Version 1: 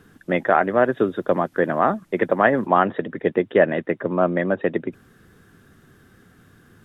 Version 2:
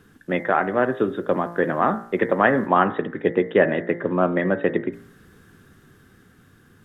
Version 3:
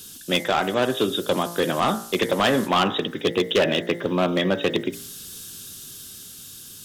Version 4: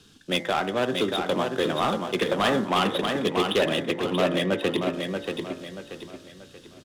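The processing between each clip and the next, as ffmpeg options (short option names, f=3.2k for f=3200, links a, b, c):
-af "equalizer=f=650:t=o:w=0.35:g=-4,bandreject=f=57.29:t=h:w=4,bandreject=f=114.58:t=h:w=4,bandreject=f=171.87:t=h:w=4,bandreject=f=229.16:t=h:w=4,bandreject=f=286.45:t=h:w=4,bandreject=f=343.74:t=h:w=4,bandreject=f=401.03:t=h:w=4,bandreject=f=458.32:t=h:w=4,bandreject=f=515.61:t=h:w=4,bandreject=f=572.9:t=h:w=4,bandreject=f=630.19:t=h:w=4,bandreject=f=687.48:t=h:w=4,bandreject=f=744.77:t=h:w=4,bandreject=f=802.06:t=h:w=4,bandreject=f=859.35:t=h:w=4,bandreject=f=916.64:t=h:w=4,bandreject=f=973.93:t=h:w=4,bandreject=f=1.03122k:t=h:w=4,bandreject=f=1.08851k:t=h:w=4,bandreject=f=1.1458k:t=h:w=4,bandreject=f=1.20309k:t=h:w=4,bandreject=f=1.26038k:t=h:w=4,bandreject=f=1.31767k:t=h:w=4,bandreject=f=1.37496k:t=h:w=4,bandreject=f=1.43225k:t=h:w=4,bandreject=f=1.48954k:t=h:w=4,bandreject=f=1.54683k:t=h:w=4,bandreject=f=1.60412k:t=h:w=4,bandreject=f=1.66141k:t=h:w=4,bandreject=f=1.7187k:t=h:w=4,bandreject=f=1.77599k:t=h:w=4,bandreject=f=1.83328k:t=h:w=4,bandreject=f=1.89057k:t=h:w=4,bandreject=f=1.94786k:t=h:w=4,bandreject=f=2.00515k:t=h:w=4,bandreject=f=2.06244k:t=h:w=4,bandreject=f=2.11973k:t=h:w=4,bandreject=f=2.17702k:t=h:w=4,bandreject=f=2.23431k:t=h:w=4,dynaudnorm=f=240:g=13:m=11.5dB,volume=-1dB"
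-af "aexciter=amount=15.4:drive=6.2:freq=2.9k,volume=13.5dB,asoftclip=hard,volume=-13.5dB"
-filter_complex "[0:a]acrossover=split=300[a][b];[b]adynamicsmooth=sensitivity=5.5:basefreq=2.6k[c];[a][c]amix=inputs=2:normalize=0,aecho=1:1:633|1266|1899|2532|3165:0.562|0.208|0.077|0.0285|0.0105,volume=-3.5dB"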